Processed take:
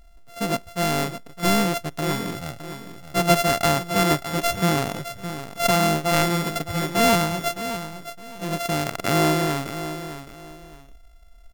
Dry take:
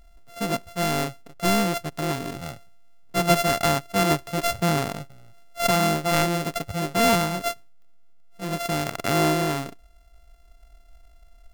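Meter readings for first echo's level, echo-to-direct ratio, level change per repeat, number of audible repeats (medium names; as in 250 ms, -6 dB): -11.0 dB, -10.5 dB, -11.5 dB, 2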